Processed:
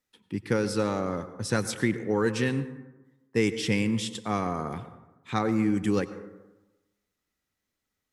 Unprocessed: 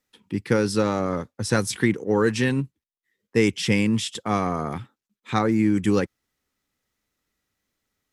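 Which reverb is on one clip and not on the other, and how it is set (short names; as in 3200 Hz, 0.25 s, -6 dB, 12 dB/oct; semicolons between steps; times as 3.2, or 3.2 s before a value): plate-style reverb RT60 1.1 s, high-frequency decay 0.4×, pre-delay 80 ms, DRR 12.5 dB; gain -5 dB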